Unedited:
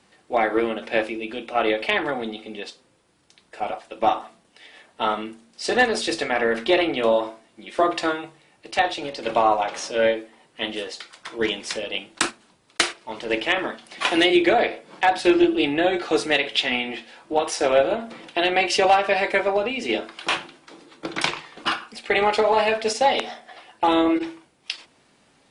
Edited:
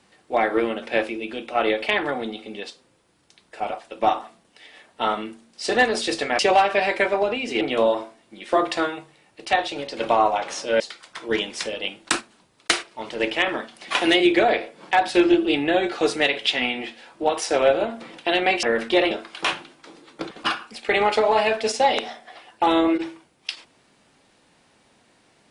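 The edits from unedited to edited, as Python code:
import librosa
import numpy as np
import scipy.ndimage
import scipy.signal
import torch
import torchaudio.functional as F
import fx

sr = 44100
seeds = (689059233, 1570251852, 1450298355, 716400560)

y = fx.edit(x, sr, fx.swap(start_s=6.39, length_s=0.48, other_s=18.73, other_length_s=1.22),
    fx.cut(start_s=10.06, length_s=0.84),
    fx.cut(start_s=21.15, length_s=0.37), tone=tone)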